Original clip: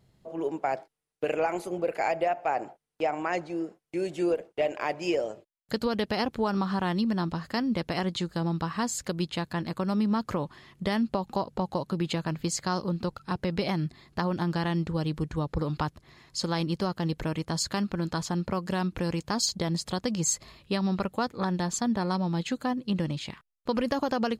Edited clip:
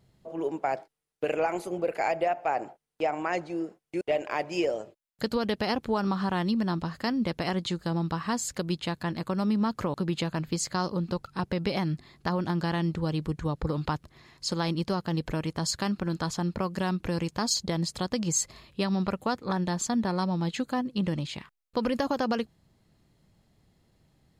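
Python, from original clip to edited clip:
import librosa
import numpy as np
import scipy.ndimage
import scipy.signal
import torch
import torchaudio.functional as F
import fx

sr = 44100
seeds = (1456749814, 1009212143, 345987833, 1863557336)

y = fx.edit(x, sr, fx.cut(start_s=4.01, length_s=0.5),
    fx.cut(start_s=10.44, length_s=1.42), tone=tone)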